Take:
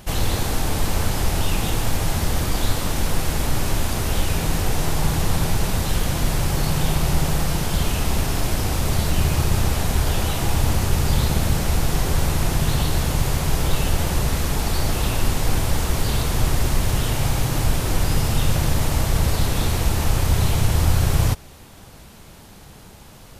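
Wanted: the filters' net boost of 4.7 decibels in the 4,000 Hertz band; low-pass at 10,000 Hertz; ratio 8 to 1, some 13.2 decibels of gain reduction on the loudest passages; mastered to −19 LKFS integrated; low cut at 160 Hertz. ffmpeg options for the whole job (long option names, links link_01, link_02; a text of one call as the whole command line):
ffmpeg -i in.wav -af "highpass=160,lowpass=10000,equalizer=frequency=4000:width_type=o:gain=6,acompressor=threshold=-35dB:ratio=8,volume=18dB" out.wav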